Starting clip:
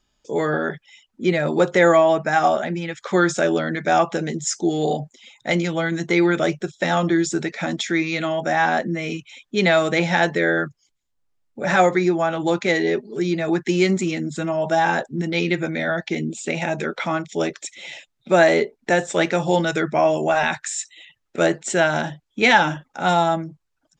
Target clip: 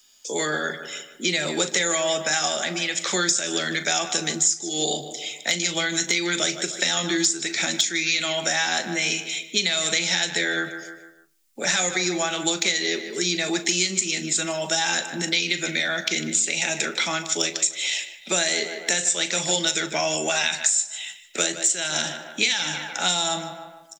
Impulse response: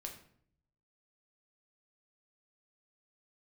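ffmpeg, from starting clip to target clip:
-filter_complex "[0:a]equalizer=frequency=90:width_type=o:width=1.2:gain=-15,asplit=2[link_01][link_02];[link_02]adelay=151,lowpass=frequency=3700:poles=1,volume=-14dB,asplit=2[link_03][link_04];[link_04]adelay=151,lowpass=frequency=3700:poles=1,volume=0.41,asplit=2[link_05][link_06];[link_06]adelay=151,lowpass=frequency=3700:poles=1,volume=0.41,asplit=2[link_07][link_08];[link_08]adelay=151,lowpass=frequency=3700:poles=1,volume=0.41[link_09];[link_01][link_03][link_05][link_07][link_09]amix=inputs=5:normalize=0,acrossover=split=330|1100[link_10][link_11][link_12];[link_12]crystalizer=i=8:c=0[link_13];[link_10][link_11][link_13]amix=inputs=3:normalize=0,acrossover=split=230|3000[link_14][link_15][link_16];[link_15]acompressor=threshold=-32dB:ratio=2[link_17];[link_14][link_17][link_16]amix=inputs=3:normalize=0,lowshelf=frequency=150:gain=-10.5,acompressor=threshold=-20dB:ratio=16,asplit=2[link_18][link_19];[link_19]adelay=39,volume=-13.5dB[link_20];[link_18][link_20]amix=inputs=2:normalize=0,asplit=2[link_21][link_22];[1:a]atrim=start_sample=2205[link_23];[link_22][link_23]afir=irnorm=-1:irlink=0,volume=-8.5dB[link_24];[link_21][link_24]amix=inputs=2:normalize=0,asoftclip=type=hard:threshold=-9dB"

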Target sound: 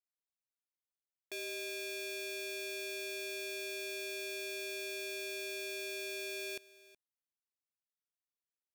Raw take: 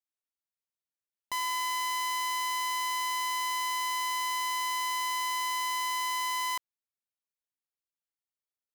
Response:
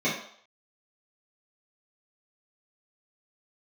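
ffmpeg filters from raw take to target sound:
-af "aecho=1:1:371:0.1,aeval=exprs='val(0)*sin(2*PI*1400*n/s)':channel_layout=same,volume=-7dB"

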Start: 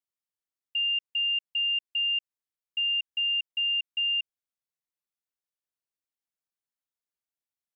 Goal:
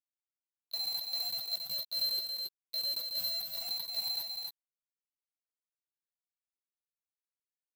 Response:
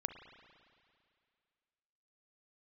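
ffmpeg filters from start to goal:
-filter_complex "[0:a]lowpass=frequency=2600:poles=1,aeval=exprs='0.0473*(cos(1*acos(clip(val(0)/0.0473,-1,1)))-cos(1*PI/2))+0.000596*(cos(4*acos(clip(val(0)/0.0473,-1,1)))-cos(4*PI/2))+0.000422*(cos(6*acos(clip(val(0)/0.0473,-1,1)))-cos(6*PI/2))':channel_layout=same,flanger=delay=19.5:depth=5:speed=0.31,afreqshift=110,acrusher=bits=5:mix=0:aa=0.000001,asetrate=62367,aresample=44100,atempo=0.707107,asplit=2[link_01][link_02];[link_02]adelay=14,volume=-8dB[link_03];[link_01][link_03]amix=inputs=2:normalize=0,aecho=1:1:275:0.596"

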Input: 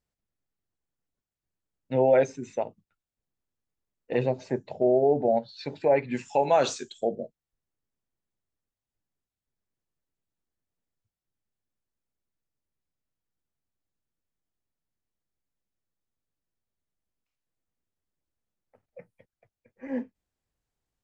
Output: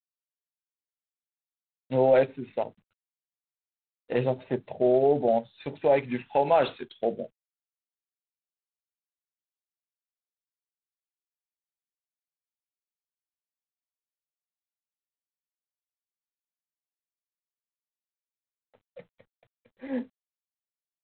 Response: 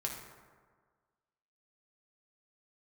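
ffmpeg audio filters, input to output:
-af "aeval=exprs='0.282*(cos(1*acos(clip(val(0)/0.282,-1,1)))-cos(1*PI/2))+0.00447*(cos(2*acos(clip(val(0)/0.282,-1,1)))-cos(2*PI/2))':channel_layout=same" -ar 8000 -c:a adpcm_g726 -b:a 24k

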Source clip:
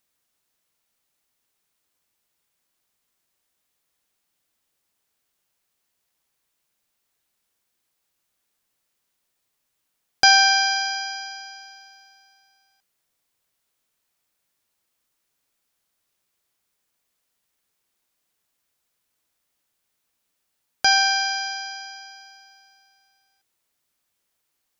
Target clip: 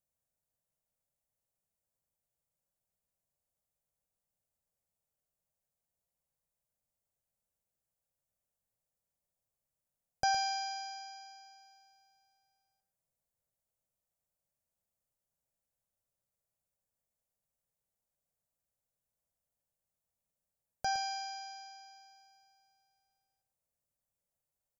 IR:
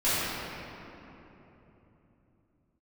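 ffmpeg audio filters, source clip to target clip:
-af "firequalizer=gain_entry='entry(140,0);entry(320,-15);entry(560,-2);entry(1100,-15);entry(3300,-23);entry(7200,-10)':delay=0.05:min_phase=1,aecho=1:1:112:0.299,volume=-4dB"

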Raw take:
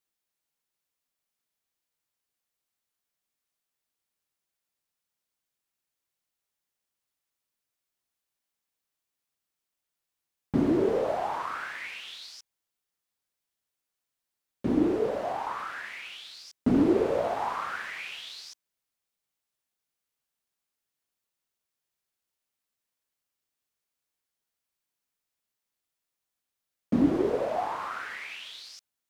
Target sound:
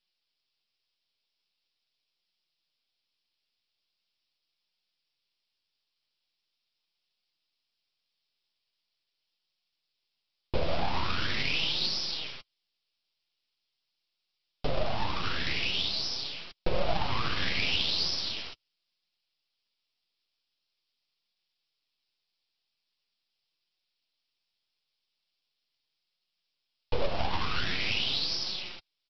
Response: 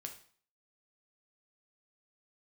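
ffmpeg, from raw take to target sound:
-af "acompressor=threshold=-30dB:ratio=2,aresample=11025,aeval=exprs='abs(val(0))':channel_layout=same,aresample=44100,flanger=delay=5.4:depth=6.5:regen=-26:speed=0.42:shape=sinusoidal,aexciter=amount=2.7:drive=8.6:freq=2500,volume=6.5dB"

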